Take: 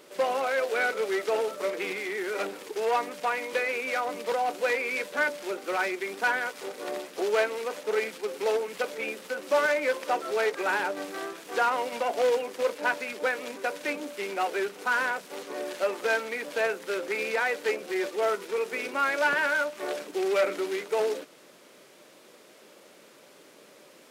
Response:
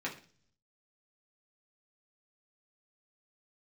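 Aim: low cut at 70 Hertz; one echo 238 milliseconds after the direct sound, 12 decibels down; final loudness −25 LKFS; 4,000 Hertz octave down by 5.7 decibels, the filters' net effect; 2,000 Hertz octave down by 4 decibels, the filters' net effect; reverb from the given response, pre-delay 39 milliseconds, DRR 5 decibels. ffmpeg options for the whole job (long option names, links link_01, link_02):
-filter_complex "[0:a]highpass=70,equalizer=frequency=2000:width_type=o:gain=-4.5,equalizer=frequency=4000:width_type=o:gain=-6,aecho=1:1:238:0.251,asplit=2[link_01][link_02];[1:a]atrim=start_sample=2205,adelay=39[link_03];[link_02][link_03]afir=irnorm=-1:irlink=0,volume=-9dB[link_04];[link_01][link_04]amix=inputs=2:normalize=0,volume=4dB"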